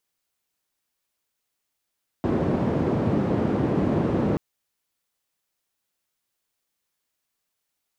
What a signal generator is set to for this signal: noise band 110–330 Hz, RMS -23 dBFS 2.13 s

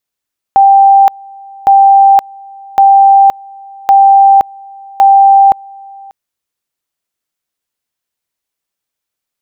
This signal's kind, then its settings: two-level tone 787 Hz -1.5 dBFS, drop 27 dB, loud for 0.52 s, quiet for 0.59 s, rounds 5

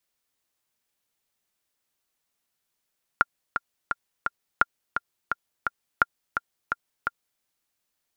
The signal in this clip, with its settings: metronome 171 bpm, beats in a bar 4, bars 3, 1.4 kHz, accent 7.5 dB -4 dBFS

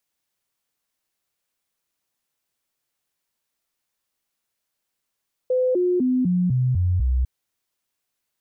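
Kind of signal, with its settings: stepped sine 508 Hz down, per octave 2, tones 7, 0.25 s, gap 0.00 s -17 dBFS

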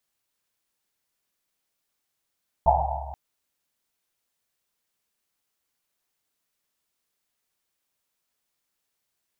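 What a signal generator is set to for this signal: Risset drum length 0.48 s, pitch 69 Hz, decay 2.40 s, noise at 780 Hz, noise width 270 Hz, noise 65%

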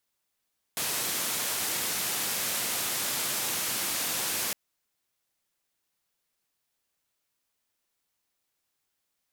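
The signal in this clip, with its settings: noise band 110–15000 Hz, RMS -30.5 dBFS 3.76 s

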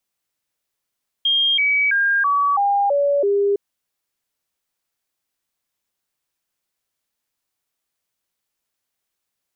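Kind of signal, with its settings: stepped sine 3.22 kHz down, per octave 2, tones 7, 0.33 s, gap 0.00 s -14.5 dBFS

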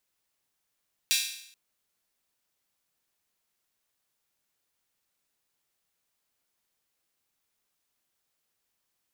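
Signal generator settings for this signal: open hi-hat length 0.43 s, high-pass 3 kHz, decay 0.70 s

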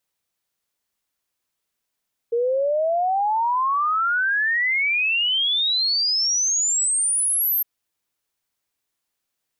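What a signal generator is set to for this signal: log sweep 460 Hz -> 13 kHz 5.31 s -18 dBFS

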